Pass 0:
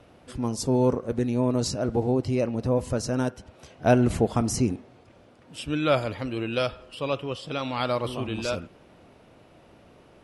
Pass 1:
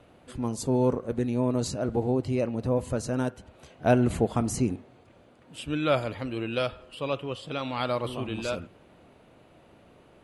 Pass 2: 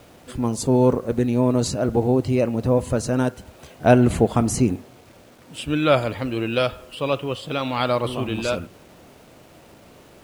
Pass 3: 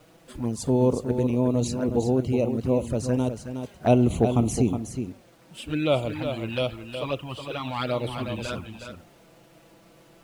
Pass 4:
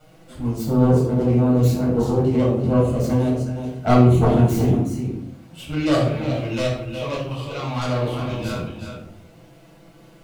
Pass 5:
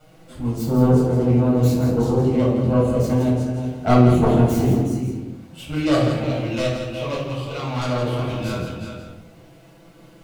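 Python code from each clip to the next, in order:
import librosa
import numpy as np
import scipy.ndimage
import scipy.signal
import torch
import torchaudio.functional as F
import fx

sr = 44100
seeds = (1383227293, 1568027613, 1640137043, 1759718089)

y1 = fx.peak_eq(x, sr, hz=5400.0, db=-10.0, octaves=0.21)
y1 = fx.hum_notches(y1, sr, base_hz=50, count=2)
y1 = y1 * 10.0 ** (-2.0 / 20.0)
y2 = fx.quant_dither(y1, sr, seeds[0], bits=10, dither='none')
y2 = y2 * 10.0 ** (7.0 / 20.0)
y3 = fx.env_flanger(y2, sr, rest_ms=6.8, full_db=-16.5)
y3 = y3 + 10.0 ** (-8.0 / 20.0) * np.pad(y3, (int(366 * sr / 1000.0), 0))[:len(y3)]
y3 = y3 * 10.0 ** (-3.5 / 20.0)
y4 = fx.self_delay(y3, sr, depth_ms=0.37)
y4 = fx.room_shoebox(y4, sr, seeds[1], volume_m3=870.0, walls='furnished', distance_m=7.2)
y4 = y4 * 10.0 ** (-5.5 / 20.0)
y5 = y4 + 10.0 ** (-8.0 / 20.0) * np.pad(y4, (int(166 * sr / 1000.0), 0))[:len(y4)]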